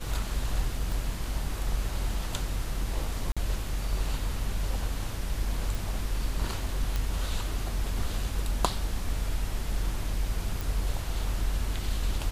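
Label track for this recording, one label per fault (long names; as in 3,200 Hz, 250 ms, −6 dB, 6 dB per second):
0.920000	0.920000	click
3.320000	3.370000	drop-out 46 ms
5.750000	5.750000	click
6.960000	6.960000	click −16 dBFS
10.610000	10.610000	click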